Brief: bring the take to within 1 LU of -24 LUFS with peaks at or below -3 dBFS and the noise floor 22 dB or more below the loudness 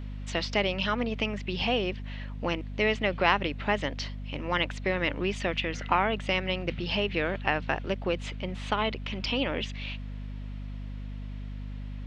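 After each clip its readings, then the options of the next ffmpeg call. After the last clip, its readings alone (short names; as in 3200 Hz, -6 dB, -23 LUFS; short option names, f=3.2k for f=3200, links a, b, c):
hum 50 Hz; harmonics up to 250 Hz; hum level -35 dBFS; loudness -29.5 LUFS; peak -6.5 dBFS; loudness target -24.0 LUFS
-> -af "bandreject=f=50:t=h:w=4,bandreject=f=100:t=h:w=4,bandreject=f=150:t=h:w=4,bandreject=f=200:t=h:w=4,bandreject=f=250:t=h:w=4"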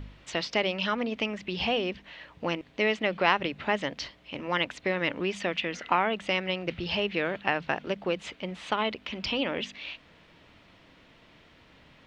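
hum none; loudness -29.5 LUFS; peak -6.5 dBFS; loudness target -24.0 LUFS
-> -af "volume=5.5dB,alimiter=limit=-3dB:level=0:latency=1"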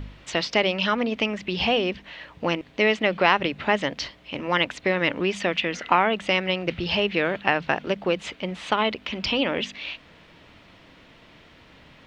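loudness -24.0 LUFS; peak -3.0 dBFS; noise floor -52 dBFS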